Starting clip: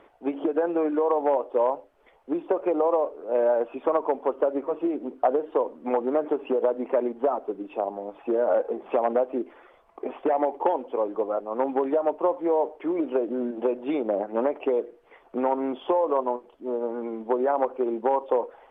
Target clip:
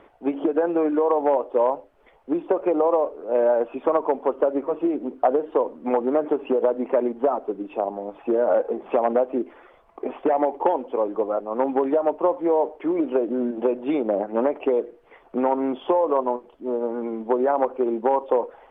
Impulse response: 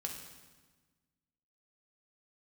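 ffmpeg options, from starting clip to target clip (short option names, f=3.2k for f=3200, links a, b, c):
-af "bass=f=250:g=4,treble=f=4k:g=-3,volume=2.5dB"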